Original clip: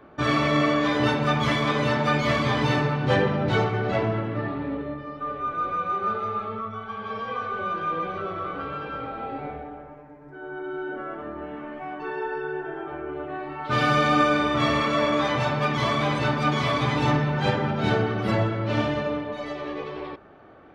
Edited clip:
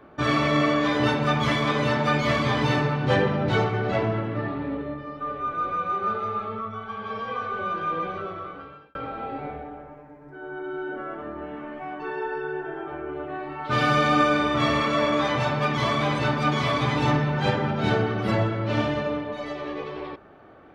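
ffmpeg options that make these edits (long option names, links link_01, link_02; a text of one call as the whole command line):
ffmpeg -i in.wav -filter_complex "[0:a]asplit=2[link_01][link_02];[link_01]atrim=end=8.95,asetpts=PTS-STARTPTS,afade=type=out:start_time=8.07:duration=0.88[link_03];[link_02]atrim=start=8.95,asetpts=PTS-STARTPTS,afade=type=in:duration=0.004:curve=hsin[link_04];[link_03][link_04]concat=n=2:v=0:a=1" out.wav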